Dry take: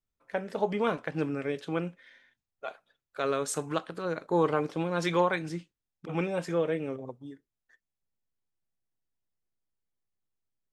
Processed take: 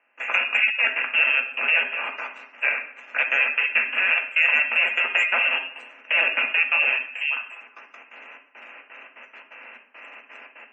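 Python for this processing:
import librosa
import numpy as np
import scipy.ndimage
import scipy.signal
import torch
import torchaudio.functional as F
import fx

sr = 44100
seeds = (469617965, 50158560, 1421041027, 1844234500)

y = fx.bin_compress(x, sr, power=0.4)
y = fx.freq_invert(y, sr, carrier_hz=3000)
y = y + 10.0 ** (-14.0 / 20.0) * np.pad(y, (int(198 * sr / 1000.0), 0))[:len(y)]
y = fx.step_gate(y, sr, bpm=172, pattern='..xxx.xx.x.x.xxx', floor_db=-24.0, edge_ms=4.5)
y = fx.env_lowpass(y, sr, base_hz=1800.0, full_db=-25.0)
y = fx.leveller(y, sr, passes=1)
y = fx.rev_fdn(y, sr, rt60_s=0.58, lf_ratio=1.2, hf_ratio=0.85, size_ms=35.0, drr_db=2.0)
y = fx.spec_gate(y, sr, threshold_db=-30, keep='strong')
y = scipy.signal.sosfilt(scipy.signal.ellip(4, 1.0, 40, 230.0, 'highpass', fs=sr, output='sos'), y)
y = fx.band_squash(y, sr, depth_pct=40)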